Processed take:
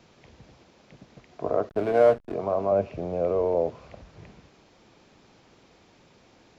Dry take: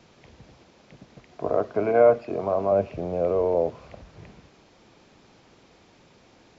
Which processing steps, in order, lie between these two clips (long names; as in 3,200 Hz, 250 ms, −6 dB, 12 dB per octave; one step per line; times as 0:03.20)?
0:01.69–0:02.34: slack as between gear wheels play −29 dBFS
level −1.5 dB